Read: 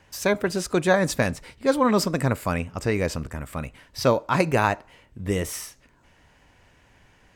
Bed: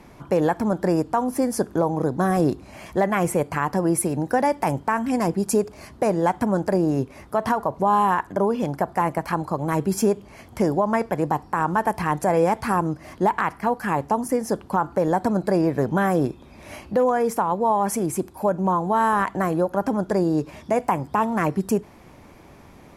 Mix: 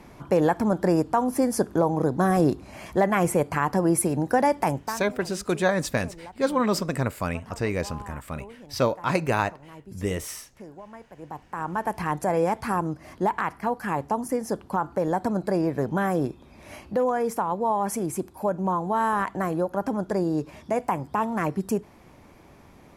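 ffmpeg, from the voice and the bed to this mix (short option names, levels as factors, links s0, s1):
-filter_complex "[0:a]adelay=4750,volume=0.708[s0];[1:a]volume=7.94,afade=t=out:st=4.62:d=0.44:silence=0.0794328,afade=t=in:st=11.16:d=0.86:silence=0.11885[s1];[s0][s1]amix=inputs=2:normalize=0"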